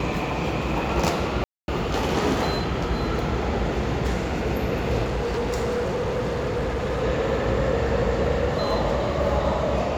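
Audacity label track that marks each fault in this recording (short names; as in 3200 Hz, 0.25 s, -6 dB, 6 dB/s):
1.440000	1.680000	gap 0.241 s
5.040000	7.040000	clipped -22 dBFS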